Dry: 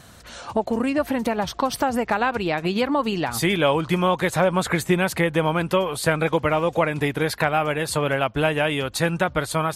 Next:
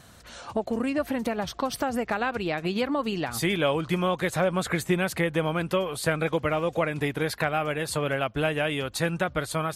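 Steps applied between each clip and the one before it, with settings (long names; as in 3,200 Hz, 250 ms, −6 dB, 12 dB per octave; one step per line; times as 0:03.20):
dynamic equaliser 920 Hz, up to −6 dB, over −38 dBFS, Q 4.7
level −4.5 dB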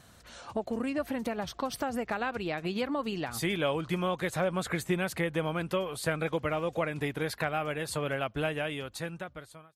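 fade-out on the ending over 1.35 s
level −5 dB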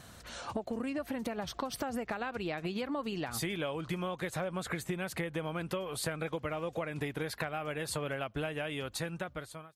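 downward compressor 6 to 1, threshold −37 dBFS, peak gain reduction 12.5 dB
level +4 dB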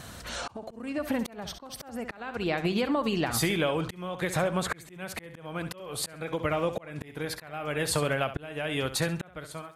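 flutter between parallel walls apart 11.5 metres, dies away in 0.33 s
volume swells 431 ms
level +8.5 dB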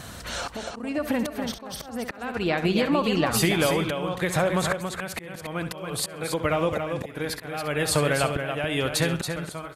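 single-tap delay 279 ms −6.5 dB
level +4 dB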